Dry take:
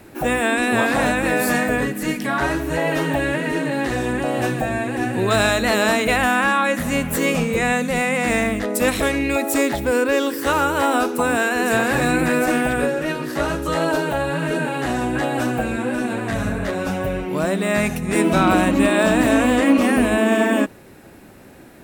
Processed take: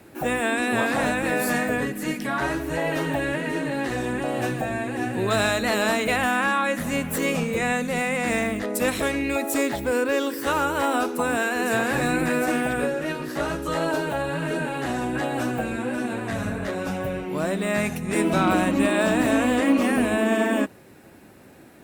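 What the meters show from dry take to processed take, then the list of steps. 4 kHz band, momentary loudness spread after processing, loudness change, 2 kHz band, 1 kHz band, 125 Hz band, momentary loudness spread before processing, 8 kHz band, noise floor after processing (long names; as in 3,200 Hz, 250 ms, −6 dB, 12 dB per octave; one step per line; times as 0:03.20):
−4.5 dB, 7 LU, −4.5 dB, −4.5 dB, −4.5 dB, −5.0 dB, 7 LU, −4.5 dB, −48 dBFS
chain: high-pass filter 69 Hz
level −4.5 dB
Opus 48 kbit/s 48,000 Hz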